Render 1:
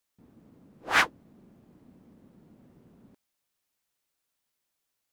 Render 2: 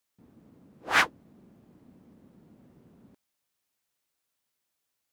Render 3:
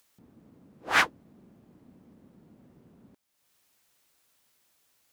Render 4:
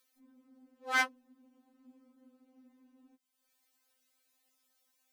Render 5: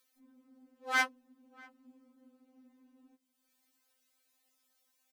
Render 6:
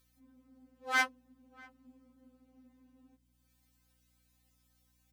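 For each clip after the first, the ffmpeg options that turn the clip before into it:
ffmpeg -i in.wav -af "highpass=40" out.wav
ffmpeg -i in.wav -af "acompressor=mode=upward:threshold=-57dB:ratio=2.5" out.wav
ffmpeg -i in.wav -af "afftfilt=real='re*3.46*eq(mod(b,12),0)':imag='im*3.46*eq(mod(b,12),0)':win_size=2048:overlap=0.75,volume=-4.5dB" out.wav
ffmpeg -i in.wav -filter_complex "[0:a]asplit=2[link_01][link_02];[link_02]adelay=641.4,volume=-24dB,highshelf=frequency=4000:gain=-14.4[link_03];[link_01][link_03]amix=inputs=2:normalize=0" out.wav
ffmpeg -i in.wav -af "aeval=exprs='val(0)+0.000224*(sin(2*PI*60*n/s)+sin(2*PI*2*60*n/s)/2+sin(2*PI*3*60*n/s)/3+sin(2*PI*4*60*n/s)/4+sin(2*PI*5*60*n/s)/5)':channel_layout=same" out.wav

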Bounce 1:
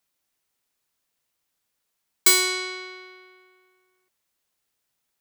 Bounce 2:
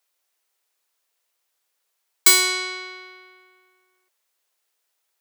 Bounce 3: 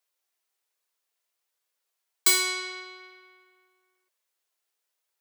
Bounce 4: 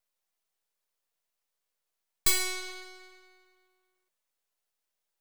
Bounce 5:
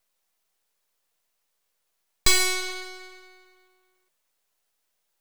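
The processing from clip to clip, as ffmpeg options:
ffmpeg -i in.wav -af "highpass=frequency=390:width=0.5412,highpass=frequency=390:width=1.3066,volume=3dB" out.wav
ffmpeg -i in.wav -af "flanger=delay=1.8:depth=1.2:regen=-59:speed=1.2:shape=sinusoidal,volume=-2.5dB" out.wav
ffmpeg -i in.wav -filter_complex "[0:a]highpass=frequency=420:poles=1,acrossover=split=830[link_01][link_02];[link_02]aeval=exprs='max(val(0),0)':channel_layout=same[link_03];[link_01][link_03]amix=inputs=2:normalize=0" out.wav
ffmpeg -i in.wav -filter_complex "[0:a]acrossover=split=8100[link_01][link_02];[link_02]acompressor=threshold=-35dB:ratio=4:attack=1:release=60[link_03];[link_01][link_03]amix=inputs=2:normalize=0,volume=8.5dB" out.wav

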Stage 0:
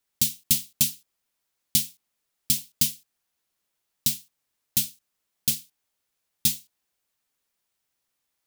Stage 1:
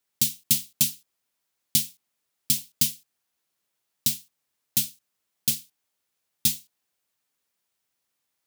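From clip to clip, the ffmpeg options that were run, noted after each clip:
ffmpeg -i in.wav -af "highpass=76" out.wav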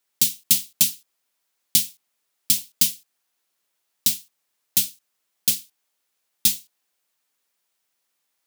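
ffmpeg -i in.wav -af "lowshelf=frequency=190:gain=-11.5,aeval=exprs='0.596*(cos(1*acos(clip(val(0)/0.596,-1,1)))-cos(1*PI/2))+0.0237*(cos(2*acos(clip(val(0)/0.596,-1,1)))-cos(2*PI/2))':channel_layout=same,volume=4dB" out.wav

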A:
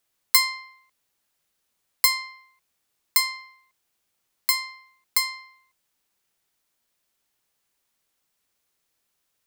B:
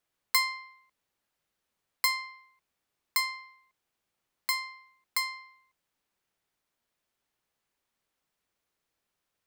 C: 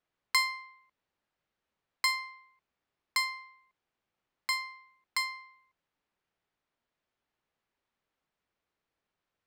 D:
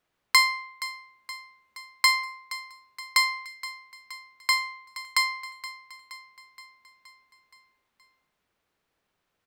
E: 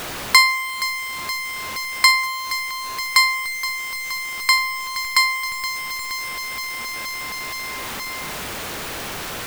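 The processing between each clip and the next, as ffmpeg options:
ffmpeg -i in.wav -af "highshelf=frequency=3800:gain=-9.5,volume=-2dB" out.wav
ffmpeg -i in.wav -af "adynamicsmooth=sensitivity=6:basefreq=4400" out.wav
ffmpeg -i in.wav -af "aecho=1:1:472|944|1416|1888|2360|2832:0.168|0.0974|0.0565|0.0328|0.019|0.011,volume=8dB" out.wav
ffmpeg -i in.wav -af "aeval=exprs='val(0)+0.5*0.0335*sgn(val(0))':channel_layout=same,volume=6dB" out.wav

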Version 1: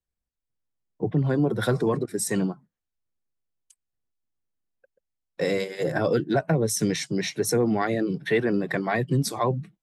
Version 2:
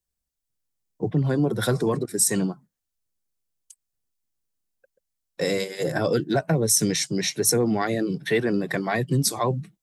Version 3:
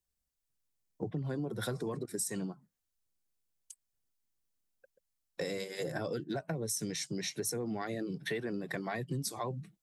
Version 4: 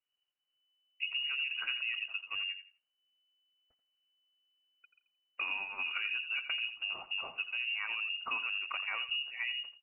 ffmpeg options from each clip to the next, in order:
ffmpeg -i in.wav -af "bass=frequency=250:gain=1,treble=frequency=4000:gain=9" out.wav
ffmpeg -i in.wav -af "acompressor=threshold=-33dB:ratio=4,volume=-2.5dB" out.wav
ffmpeg -i in.wav -filter_complex "[0:a]asplit=2[link_01][link_02];[link_02]adelay=85,lowpass=frequency=2100:poles=1,volume=-10dB,asplit=2[link_03][link_04];[link_04]adelay=85,lowpass=frequency=2100:poles=1,volume=0.23,asplit=2[link_05][link_06];[link_06]adelay=85,lowpass=frequency=2100:poles=1,volume=0.23[link_07];[link_01][link_03][link_05][link_07]amix=inputs=4:normalize=0,lowpass=frequency=2600:width_type=q:width=0.5098,lowpass=frequency=2600:width_type=q:width=0.6013,lowpass=frequency=2600:width_type=q:width=0.9,lowpass=frequency=2600:width_type=q:width=2.563,afreqshift=-3000" out.wav

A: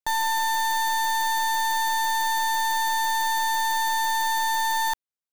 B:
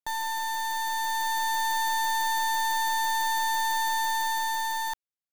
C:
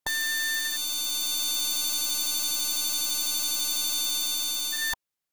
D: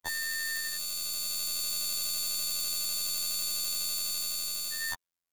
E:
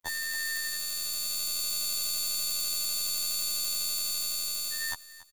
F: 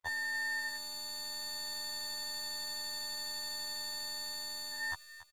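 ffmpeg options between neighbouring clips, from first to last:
ffmpeg -i in.wav -af "dynaudnorm=framelen=210:gausssize=11:maxgain=4dB,volume=-6.5dB" out.wav
ffmpeg -i in.wav -af "afftfilt=real='re*lt(hypot(re,im),0.141)':imag='im*lt(hypot(re,im),0.141)':win_size=1024:overlap=0.75,volume=8dB" out.wav
ffmpeg -i in.wav -af "afftfilt=real='hypot(re,im)*cos(PI*b)':imag='0':win_size=2048:overlap=0.75,volume=-1dB" out.wav
ffmpeg -i in.wav -af "aecho=1:1:282|564|846:0.133|0.04|0.012" out.wav
ffmpeg -i in.wav -filter_complex "[0:a]lowshelf=frequency=160:width_type=q:width=1.5:gain=11.5,asplit=2[link_01][link_02];[link_02]highpass=frequency=720:poles=1,volume=19dB,asoftclip=type=tanh:threshold=-10.5dB[link_03];[link_01][link_03]amix=inputs=2:normalize=0,lowpass=frequency=1600:poles=1,volume=-6dB,volume=-8.5dB" out.wav

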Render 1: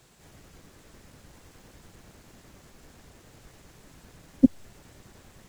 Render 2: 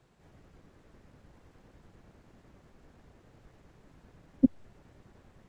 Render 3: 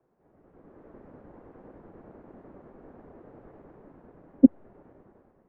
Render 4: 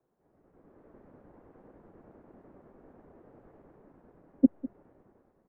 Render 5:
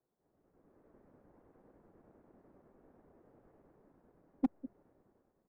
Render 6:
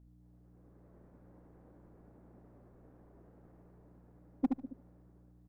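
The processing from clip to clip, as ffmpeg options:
ffmpeg -i in.wav -af "lowpass=frequency=1400:poles=1,volume=-4.5dB" out.wav
ffmpeg -i in.wav -filter_complex "[0:a]acrossover=split=240 2100:gain=0.158 1 0.0794[link_01][link_02][link_03];[link_01][link_02][link_03]amix=inputs=3:normalize=0,dynaudnorm=framelen=140:gausssize=9:maxgain=15dB,tiltshelf=frequency=1300:gain=8.5,volume=-7.5dB" out.wav
ffmpeg -i in.wav -af "aecho=1:1:201:0.141,volume=-6dB" out.wav
ffmpeg -i in.wav -af "asoftclip=type=hard:threshold=-14dB,volume=-8.5dB" out.wav
ffmpeg -i in.wav -filter_complex "[0:a]aeval=exprs='val(0)+0.00112*(sin(2*PI*60*n/s)+sin(2*PI*2*60*n/s)/2+sin(2*PI*3*60*n/s)/3+sin(2*PI*4*60*n/s)/4+sin(2*PI*5*60*n/s)/5)':channel_layout=same,asplit=2[link_01][link_02];[link_02]aecho=0:1:73|146|219:0.631|0.0946|0.0142[link_03];[link_01][link_03]amix=inputs=2:normalize=0" out.wav

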